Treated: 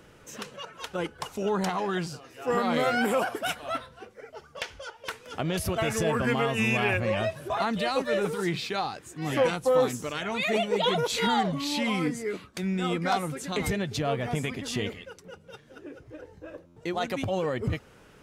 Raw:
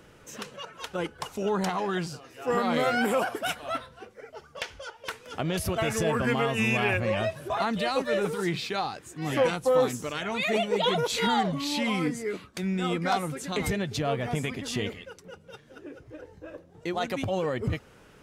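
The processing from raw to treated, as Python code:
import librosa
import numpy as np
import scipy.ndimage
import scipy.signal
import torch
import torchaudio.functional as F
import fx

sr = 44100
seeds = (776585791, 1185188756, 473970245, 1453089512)

y = fx.buffer_glitch(x, sr, at_s=(16.66,), block=512, repeats=8)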